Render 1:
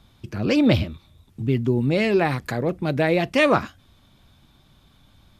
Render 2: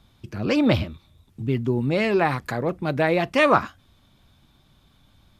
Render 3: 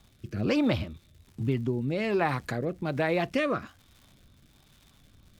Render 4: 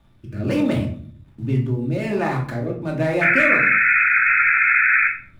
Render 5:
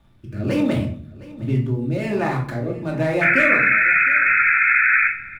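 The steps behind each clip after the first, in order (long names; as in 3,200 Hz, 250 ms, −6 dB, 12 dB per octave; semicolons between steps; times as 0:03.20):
dynamic equaliser 1,100 Hz, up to +7 dB, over −36 dBFS, Q 1.1; level −2.5 dB
downward compressor 2 to 1, threshold −25 dBFS, peak gain reduction 7.5 dB; surface crackle 230 per second −44 dBFS; rotating-speaker cabinet horn 1.2 Hz
running median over 9 samples; sound drawn into the spectrogram noise, 0:03.21–0:05.08, 1,300–2,600 Hz −20 dBFS; rectangular room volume 490 cubic metres, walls furnished, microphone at 2.6 metres
single-tap delay 712 ms −19.5 dB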